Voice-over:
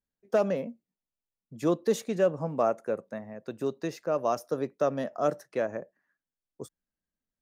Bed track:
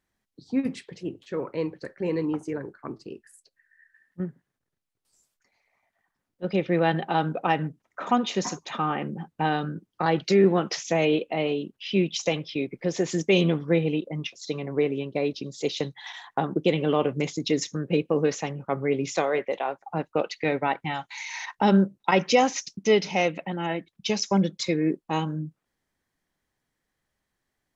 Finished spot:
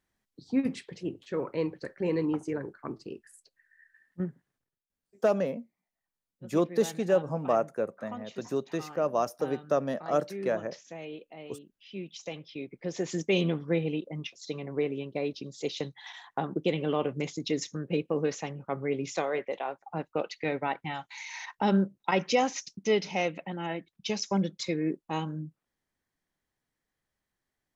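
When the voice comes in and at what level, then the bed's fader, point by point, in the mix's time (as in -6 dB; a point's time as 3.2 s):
4.90 s, 0.0 dB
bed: 4.59 s -1.5 dB
4.9 s -19 dB
11.72 s -19 dB
13.11 s -5.5 dB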